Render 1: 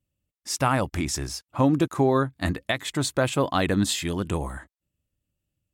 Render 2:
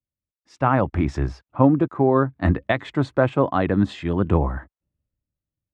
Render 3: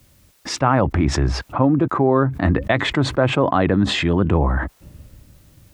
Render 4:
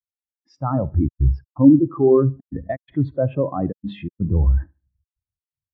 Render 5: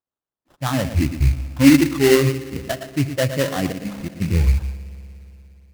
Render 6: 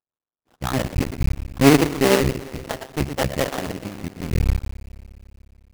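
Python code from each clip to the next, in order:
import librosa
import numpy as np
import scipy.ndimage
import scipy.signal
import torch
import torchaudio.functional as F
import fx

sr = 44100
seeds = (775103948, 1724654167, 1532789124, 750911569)

y1 = fx.rider(x, sr, range_db=10, speed_s=0.5)
y1 = scipy.signal.sosfilt(scipy.signal.butter(2, 1500.0, 'lowpass', fs=sr, output='sos'), y1)
y1 = fx.band_widen(y1, sr, depth_pct=40)
y1 = F.gain(torch.from_numpy(y1), 5.0).numpy()
y2 = fx.env_flatten(y1, sr, amount_pct=70)
y2 = F.gain(torch.from_numpy(y2), -2.0).numpy()
y3 = fx.echo_feedback(y2, sr, ms=74, feedback_pct=54, wet_db=-11)
y3 = fx.step_gate(y3, sr, bpm=125, pattern='x.xxxxxxx.x', floor_db=-60.0, edge_ms=4.5)
y3 = fx.spectral_expand(y3, sr, expansion=2.5)
y4 = y3 + 10.0 ** (-10.5 / 20.0) * np.pad(y3, (int(114 * sr / 1000.0), 0))[:len(y3)]
y4 = fx.rev_spring(y4, sr, rt60_s=3.2, pass_ms=(59,), chirp_ms=25, drr_db=15.5)
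y4 = fx.sample_hold(y4, sr, seeds[0], rate_hz=2400.0, jitter_pct=20)
y5 = fx.cycle_switch(y4, sr, every=2, mode='muted')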